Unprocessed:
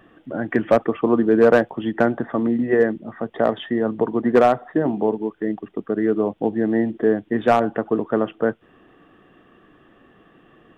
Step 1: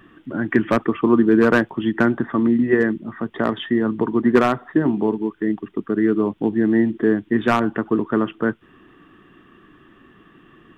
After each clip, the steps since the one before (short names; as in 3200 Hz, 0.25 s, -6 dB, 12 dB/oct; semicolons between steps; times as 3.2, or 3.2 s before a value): band shelf 610 Hz -10 dB 1 oct; gain +3.5 dB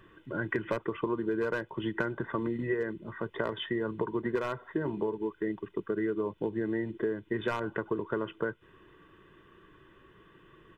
comb 2 ms, depth 70%; compressor 12:1, threshold -20 dBFS, peak gain reduction 12.5 dB; gain -7 dB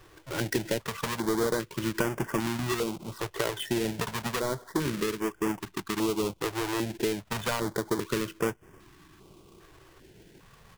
half-waves squared off; stepped notch 2.5 Hz 220–4000 Hz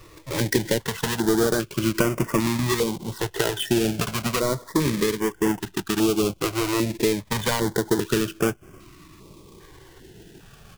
cascading phaser falling 0.44 Hz; gain +8 dB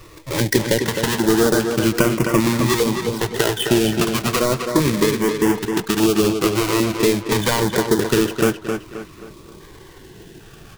tape echo 0.263 s, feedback 41%, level -5 dB, low-pass 4800 Hz; gain +4.5 dB